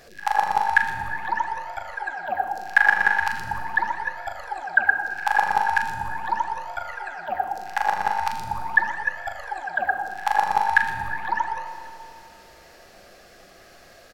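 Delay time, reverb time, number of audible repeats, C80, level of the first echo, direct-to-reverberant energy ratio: 484 ms, 2.2 s, 1, 7.5 dB, −19.5 dB, 5.5 dB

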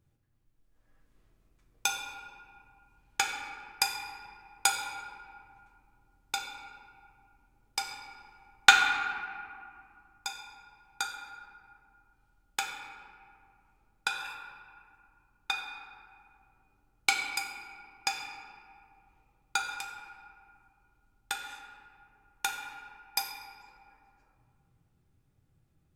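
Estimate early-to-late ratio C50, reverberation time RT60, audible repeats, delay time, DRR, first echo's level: 4.0 dB, 2.3 s, no echo audible, no echo audible, 0.0 dB, no echo audible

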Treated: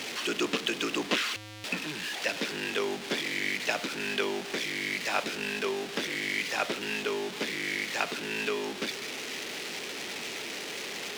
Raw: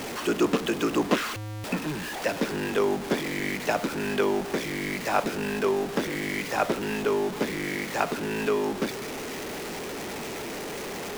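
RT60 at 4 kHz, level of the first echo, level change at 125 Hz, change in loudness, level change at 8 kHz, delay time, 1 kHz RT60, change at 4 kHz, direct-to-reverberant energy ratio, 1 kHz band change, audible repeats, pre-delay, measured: no reverb audible, no echo audible, −11.0 dB, −3.0 dB, −0.5 dB, no echo audible, no reverb audible, +4.0 dB, no reverb audible, −6.5 dB, no echo audible, no reverb audible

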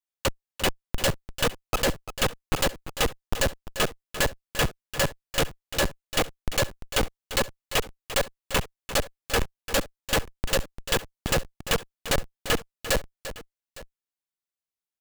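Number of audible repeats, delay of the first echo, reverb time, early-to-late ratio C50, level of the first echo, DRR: 2, 345 ms, no reverb audible, no reverb audible, −12.5 dB, no reverb audible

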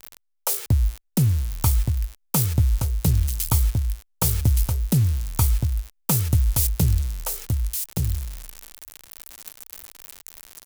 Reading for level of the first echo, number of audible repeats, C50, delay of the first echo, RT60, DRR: −4.5 dB, 1, no reverb audible, 1,171 ms, no reverb audible, no reverb audible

